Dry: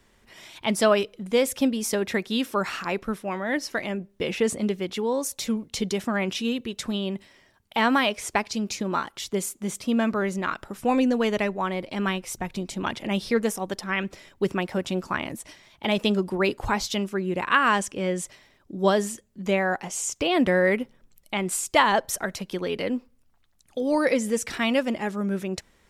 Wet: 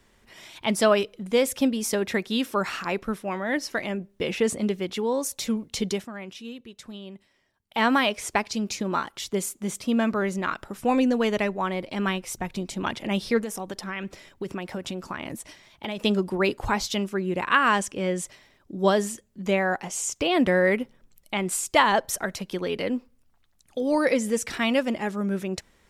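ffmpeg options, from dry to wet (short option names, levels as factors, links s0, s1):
-filter_complex "[0:a]asettb=1/sr,asplit=3[s0][s1][s2];[s0]atrim=end=13.424[s3];[s1]atrim=start=13.42:end=16,asetpts=PTS-STARTPTS,afade=t=in:d=0.004:c=qsin,afade=t=out:st=2.576:d=0.004:c=qsin,acompressor=threshold=0.0398:ratio=5:attack=3.2:release=140:knee=1:detection=peak[s4];[s2]atrim=start=15.996[s5];[s3][s4]acrossfade=d=0.004:c1=hsin:c2=qsin[s6];[s6][s5]acrossfade=d=0.004:c1=qsin:c2=hsin,asplit=3[s7][s8][s9];[s7]atrim=end=6.08,asetpts=PTS-STARTPTS,afade=t=out:st=5.93:d=0.15:silence=0.251189[s10];[s8]atrim=start=6.08:end=7.67,asetpts=PTS-STARTPTS,volume=0.251[s11];[s9]atrim=start=7.67,asetpts=PTS-STARTPTS,afade=t=in:d=0.15:silence=0.251189[s12];[s10][s11][s12]concat=n=3:v=0:a=1"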